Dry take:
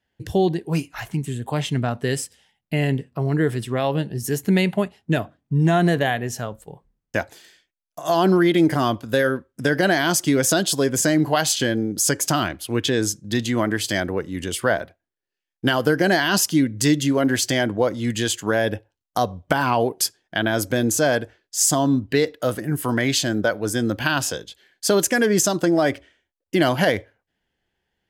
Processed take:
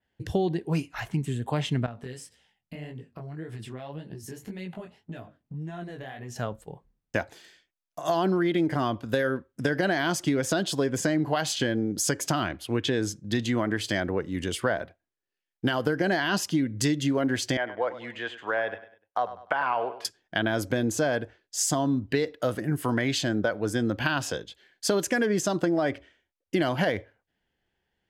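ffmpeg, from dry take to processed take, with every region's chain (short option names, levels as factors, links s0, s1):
-filter_complex "[0:a]asettb=1/sr,asplit=3[s0][s1][s2];[s0]atrim=end=1.864[s3];[s1]atrim=start=1.86:end=6.36,asetpts=PTS-STARTPTS,afade=t=in:d=0.004:c=qsin,afade=t=out:st=4.496:d=0.004:c=qsin,acompressor=threshold=0.0355:ratio=12:attack=3.2:release=140:knee=1:detection=peak,flanger=delay=16.5:depth=7.4:speed=1.8[s4];[s2]atrim=start=6.356[s5];[s3][s4]acrossfade=d=0.004:c1=hsin:c2=qsin[s6];[s6][s5]acrossfade=d=0.004:c1=qsin:c2=hsin,asettb=1/sr,asplit=3[s7][s8][s9];[s7]atrim=end=17.574[s10];[s8]atrim=start=17.57:end=20.05,asetpts=PTS-STARTPTS,afade=t=in:d=0.004:c=qsin,afade=t=out:st=2.476:d=0.004:c=qsin,acrossover=split=3200[s11][s12];[s12]acompressor=threshold=0.0158:ratio=4:attack=1:release=60[s13];[s11][s13]amix=inputs=2:normalize=0,acrossover=split=520 3000:gain=0.0891 1 0.112[s14][s15][s16];[s14][s15][s16]amix=inputs=3:normalize=0,aecho=1:1:99|198|297:0.188|0.0678|0.0244,atrim=end_sample=109368[s17];[s9]atrim=start=20.046[s18];[s10][s17]acrossfade=d=0.004:c1=hsin:c2=qsin[s19];[s19][s18]acrossfade=d=0.004:c1=qsin:c2=hsin,highshelf=f=9100:g=-10.5,acompressor=threshold=0.112:ratio=6,adynamicequalizer=threshold=0.00794:dfrequency=4100:dqfactor=0.7:tfrequency=4100:tqfactor=0.7:attack=5:release=100:ratio=0.375:range=3:mode=cutabove:tftype=highshelf,volume=0.794"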